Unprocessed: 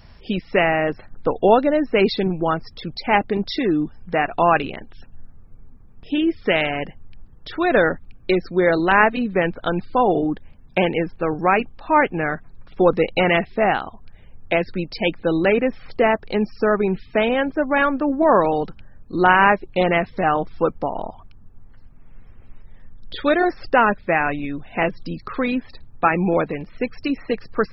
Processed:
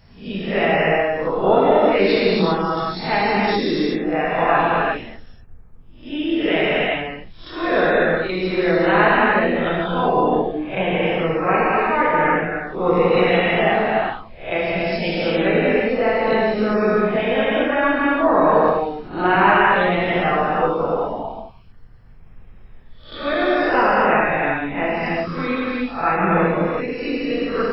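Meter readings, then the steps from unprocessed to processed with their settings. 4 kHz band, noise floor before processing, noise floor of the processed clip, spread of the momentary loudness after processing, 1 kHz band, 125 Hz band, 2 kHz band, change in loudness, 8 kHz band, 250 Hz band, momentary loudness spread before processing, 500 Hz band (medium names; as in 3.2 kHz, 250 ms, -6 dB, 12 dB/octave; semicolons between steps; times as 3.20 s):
+3.0 dB, -46 dBFS, -42 dBFS, 9 LU, +2.0 dB, +2.0 dB, +2.5 dB, +1.5 dB, no reading, +1.0 dB, 11 LU, +2.0 dB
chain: reverse spectral sustain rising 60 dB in 0.42 s; gated-style reverb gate 420 ms flat, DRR -7.5 dB; attacks held to a fixed rise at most 450 dB/s; trim -7.5 dB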